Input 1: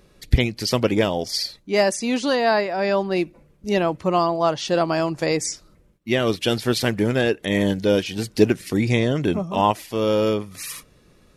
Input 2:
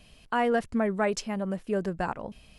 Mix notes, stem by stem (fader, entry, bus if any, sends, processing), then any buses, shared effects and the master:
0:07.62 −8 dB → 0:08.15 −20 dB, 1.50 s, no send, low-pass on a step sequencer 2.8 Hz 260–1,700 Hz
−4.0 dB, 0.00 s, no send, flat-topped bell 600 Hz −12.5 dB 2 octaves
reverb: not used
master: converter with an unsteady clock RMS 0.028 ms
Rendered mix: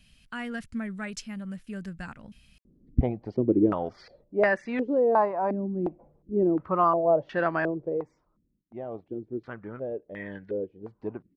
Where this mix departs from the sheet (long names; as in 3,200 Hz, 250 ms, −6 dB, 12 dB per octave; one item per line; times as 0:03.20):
stem 1: entry 1.50 s → 2.65 s
master: missing converter with an unsteady clock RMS 0.028 ms